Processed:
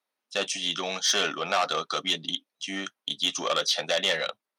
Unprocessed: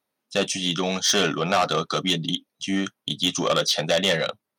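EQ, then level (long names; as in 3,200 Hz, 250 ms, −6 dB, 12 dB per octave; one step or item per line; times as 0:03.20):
meter weighting curve A
−3.5 dB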